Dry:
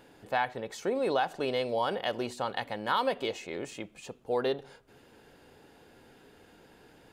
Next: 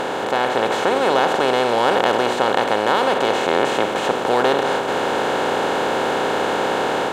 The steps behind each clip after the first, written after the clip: spectral levelling over time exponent 0.2; level rider gain up to 4 dB; trim +1.5 dB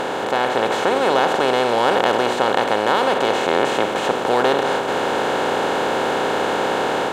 no audible change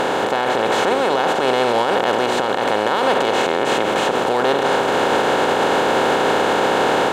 loudness maximiser +11 dB; trim -6.5 dB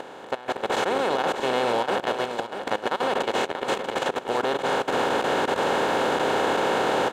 level held to a coarse grid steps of 18 dB; delay 638 ms -8.5 dB; trim -5.5 dB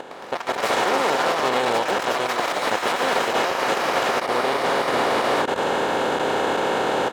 ever faster or slower copies 111 ms, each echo +5 st, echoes 3; trim +1 dB

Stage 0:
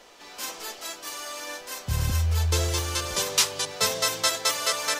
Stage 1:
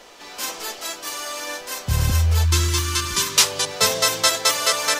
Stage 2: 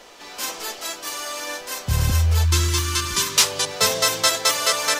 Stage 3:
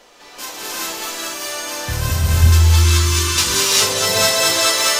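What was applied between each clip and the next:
time-frequency box 2.44–3.37 s, 400–890 Hz -19 dB; trim +6 dB
saturation -3 dBFS, distortion -26 dB
gated-style reverb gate 430 ms rising, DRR -7 dB; trim -3 dB

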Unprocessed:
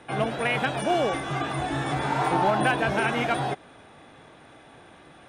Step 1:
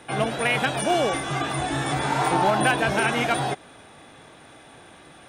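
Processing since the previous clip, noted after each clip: treble shelf 4.5 kHz +9.5 dB; trim +1.5 dB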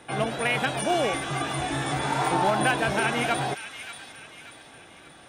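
feedback echo behind a high-pass 583 ms, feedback 43%, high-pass 2 kHz, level -8 dB; trim -2.5 dB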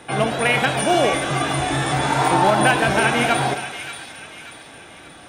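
reverberation RT60 1.3 s, pre-delay 27 ms, DRR 8.5 dB; trim +6.5 dB

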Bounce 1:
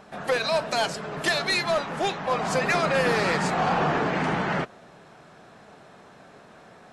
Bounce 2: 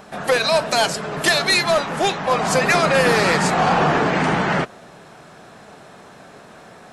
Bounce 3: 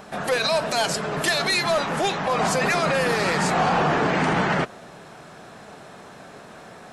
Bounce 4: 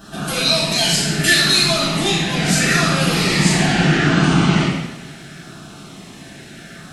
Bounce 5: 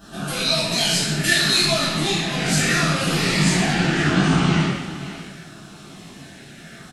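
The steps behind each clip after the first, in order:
treble shelf 8 kHz +9 dB; trim +6.5 dB
peak limiter -13.5 dBFS, peak gain reduction 8 dB
high-order bell 640 Hz -12 dB; LFO notch saw down 0.74 Hz 970–2200 Hz; two-slope reverb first 0.9 s, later 2.3 s, DRR -9 dB; trim +1 dB
delay 520 ms -14 dB; detune thickener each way 40 cents

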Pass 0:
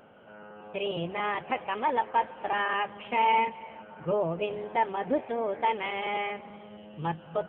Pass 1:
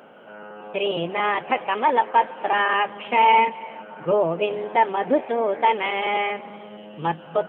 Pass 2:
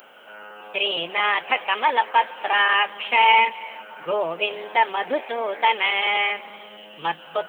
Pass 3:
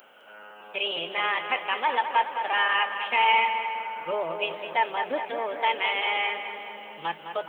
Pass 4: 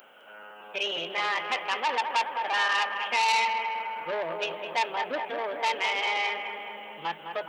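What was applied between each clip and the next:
high-pass 210 Hz 12 dB/octave; trim +8 dB
tilt EQ +5 dB/octave
filtered feedback delay 209 ms, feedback 70%, low-pass 3 kHz, level -8 dB; trim -5.5 dB
transformer saturation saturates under 3.6 kHz

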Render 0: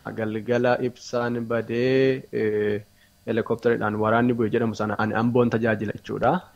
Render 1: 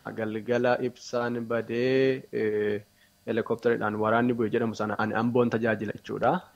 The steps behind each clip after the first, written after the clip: bass shelf 79 Hz -11 dB; trim -3 dB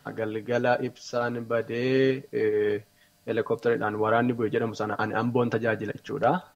comb 6.9 ms, depth 45%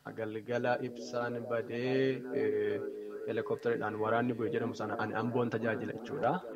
repeats whose band climbs or falls 398 ms, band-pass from 280 Hz, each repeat 0.7 oct, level -6.5 dB; trim -8 dB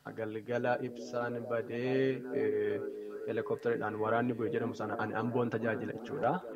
dynamic bell 4.6 kHz, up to -5 dB, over -57 dBFS, Q 1.2

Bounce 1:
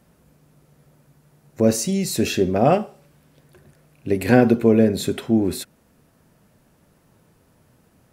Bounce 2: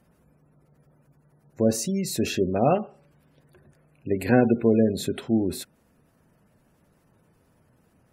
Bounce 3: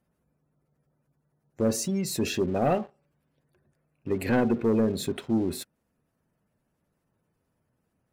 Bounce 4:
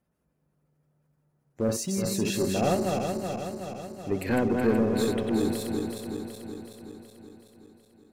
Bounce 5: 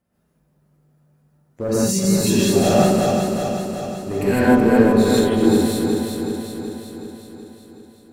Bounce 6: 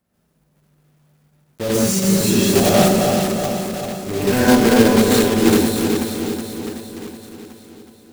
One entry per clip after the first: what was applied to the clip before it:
spectral gate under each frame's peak -30 dB strong; trim -4.5 dB
waveshaping leveller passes 2; trim -9 dB
backward echo that repeats 187 ms, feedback 77%, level -4 dB; trim -2 dB
gated-style reverb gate 180 ms rising, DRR -7 dB; trim +1.5 dB
block-companded coder 3-bit; trim +1 dB

